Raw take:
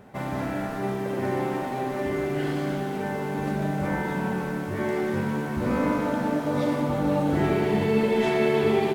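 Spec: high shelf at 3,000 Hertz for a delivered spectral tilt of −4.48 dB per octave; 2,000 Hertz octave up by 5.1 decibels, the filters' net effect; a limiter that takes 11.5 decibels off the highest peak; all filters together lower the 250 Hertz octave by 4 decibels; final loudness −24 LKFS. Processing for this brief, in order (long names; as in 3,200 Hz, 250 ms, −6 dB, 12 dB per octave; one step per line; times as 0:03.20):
parametric band 250 Hz −5.5 dB
parametric band 2,000 Hz +4.5 dB
high-shelf EQ 3,000 Hz +5.5 dB
level +7 dB
brickwall limiter −15.5 dBFS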